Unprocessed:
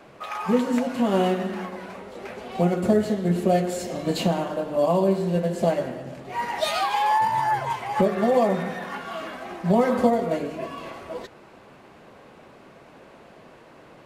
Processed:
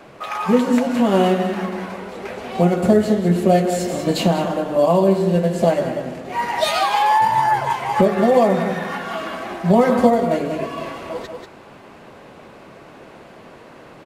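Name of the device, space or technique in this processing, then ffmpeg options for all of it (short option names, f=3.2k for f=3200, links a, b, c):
ducked delay: -filter_complex "[0:a]asplit=3[a][b][c];[b]adelay=189,volume=-5.5dB[d];[c]apad=whole_len=628039[e];[d][e]sidechaincompress=threshold=-26dB:ratio=8:attack=16:release=367[f];[a][f]amix=inputs=2:normalize=0,volume=5.5dB"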